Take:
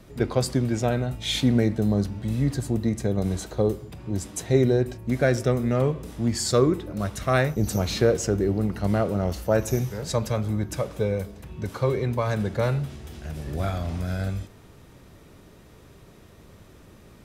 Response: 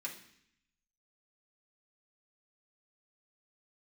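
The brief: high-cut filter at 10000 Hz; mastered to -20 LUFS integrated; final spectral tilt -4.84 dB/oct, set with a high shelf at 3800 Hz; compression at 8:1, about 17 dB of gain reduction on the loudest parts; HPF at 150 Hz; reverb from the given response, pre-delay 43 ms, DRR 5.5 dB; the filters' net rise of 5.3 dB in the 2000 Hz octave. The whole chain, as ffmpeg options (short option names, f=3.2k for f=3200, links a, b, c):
-filter_complex "[0:a]highpass=150,lowpass=10k,equalizer=f=2k:t=o:g=9,highshelf=f=3.8k:g=-8.5,acompressor=threshold=-33dB:ratio=8,asplit=2[a][b];[1:a]atrim=start_sample=2205,adelay=43[c];[b][c]afir=irnorm=-1:irlink=0,volume=-5dB[d];[a][d]amix=inputs=2:normalize=0,volume=17dB"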